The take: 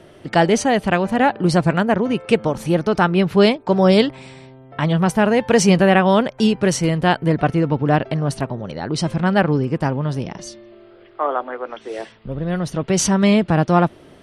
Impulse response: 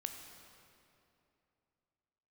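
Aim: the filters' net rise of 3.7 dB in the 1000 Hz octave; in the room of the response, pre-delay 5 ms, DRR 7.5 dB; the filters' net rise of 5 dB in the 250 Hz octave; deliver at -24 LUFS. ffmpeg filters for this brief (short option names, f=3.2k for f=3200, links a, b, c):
-filter_complex "[0:a]equalizer=f=250:t=o:g=7,equalizer=f=1k:t=o:g=4.5,asplit=2[a][b];[1:a]atrim=start_sample=2205,adelay=5[c];[b][c]afir=irnorm=-1:irlink=0,volume=-6dB[d];[a][d]amix=inputs=2:normalize=0,volume=-11.5dB"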